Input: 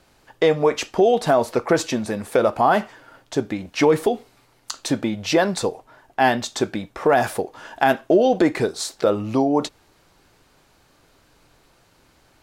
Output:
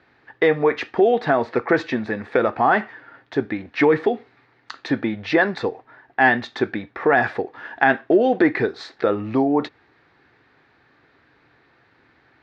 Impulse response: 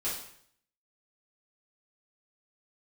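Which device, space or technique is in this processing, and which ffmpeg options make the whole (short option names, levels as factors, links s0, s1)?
guitar cabinet: -af "highpass=110,equalizer=f=180:t=q:w=4:g=-7,equalizer=f=590:t=q:w=4:g=-7,equalizer=f=1000:t=q:w=4:g=-3,equalizer=f=1800:t=q:w=4:g=8,equalizer=f=3000:t=q:w=4:g=-7,lowpass=f=3500:w=0.5412,lowpass=f=3500:w=1.3066,volume=1.19"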